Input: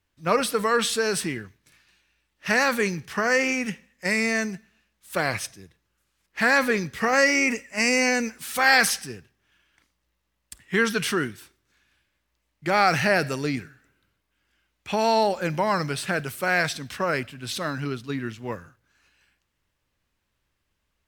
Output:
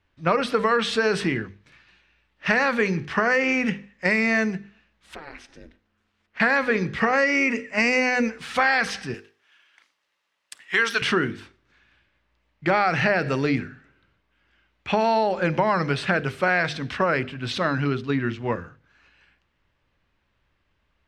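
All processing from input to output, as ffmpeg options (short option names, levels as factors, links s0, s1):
-filter_complex "[0:a]asettb=1/sr,asplit=3[s0][s1][s2];[s0]atrim=end=5.144[s3];[s1]atrim=start=5.14:end=6.4,asetpts=PTS-STARTPTS,afade=t=in:d=0.004:c=qsin,afade=t=out:st=1.256:d=0.004:c=qsin,acompressor=threshold=0.00794:ratio=4:attack=3.2:release=140:knee=1:detection=peak,aeval=exprs='val(0)*sin(2*PI*150*n/s)':c=same[s4];[s2]atrim=start=6.396[s5];[s3][s4]acrossfade=d=0.004:c1=hsin:c2=qsin[s6];[s6][s5]acrossfade=d=0.004:c1=qsin:c2=hsin,asettb=1/sr,asplit=3[s7][s8][s9];[s7]atrim=end=7.244[s10];[s8]atrim=start=7.24:end=7.71,asetpts=PTS-STARTPTS,afade=t=in:d=0.004:c=qsin,afade=t=out:st=0.466:d=0.004:c=qsin,highpass=88,equalizer=f=770:t=o:w=0.21:g=-8[s11];[s9]atrim=start=7.706[s12];[s10][s11]acrossfade=d=0.004:c1=hsin:c2=qsin[s13];[s13][s12]acrossfade=d=0.004:c1=qsin:c2=hsin,asettb=1/sr,asplit=3[s14][s15][s16];[s14]atrim=end=9.144[s17];[s15]atrim=start=9.14:end=11.02,asetpts=PTS-STARTPTS,afade=t=in:d=0.004:c=qsin,afade=t=out:st=1.876:d=0.004:c=qsin,highpass=f=700:p=1,aemphasis=mode=production:type=bsi[s18];[s16]atrim=start=11.016[s19];[s17][s18]acrossfade=d=0.004:c1=hsin:c2=qsin[s20];[s20][s19]acrossfade=d=0.004:c1=qsin:c2=hsin,lowpass=3200,bandreject=f=50:t=h:w=6,bandreject=f=100:t=h:w=6,bandreject=f=150:t=h:w=6,bandreject=f=200:t=h:w=6,bandreject=f=250:t=h:w=6,bandreject=f=300:t=h:w=6,bandreject=f=350:t=h:w=6,bandreject=f=400:t=h:w=6,bandreject=f=450:t=h:w=6,bandreject=f=500:t=h:w=6,acompressor=threshold=0.0631:ratio=6,volume=2.24"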